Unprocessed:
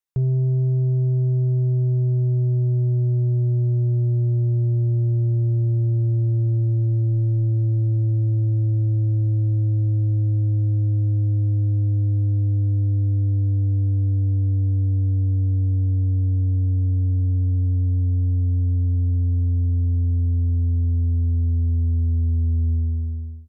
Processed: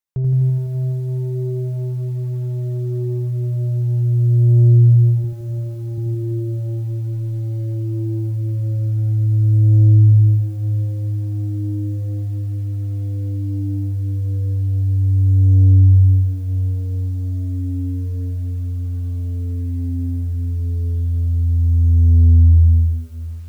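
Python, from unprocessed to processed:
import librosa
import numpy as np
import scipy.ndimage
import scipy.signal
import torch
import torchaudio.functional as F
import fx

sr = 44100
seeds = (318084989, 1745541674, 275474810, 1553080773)

y = fx.low_shelf(x, sr, hz=110.0, db=-9.5, at=(5.24, 5.98))
y = fx.notch(y, sr, hz=540.0, q=12.0, at=(18.87, 19.61))
y = fx.echo_crushed(y, sr, ms=84, feedback_pct=80, bits=9, wet_db=-4.5)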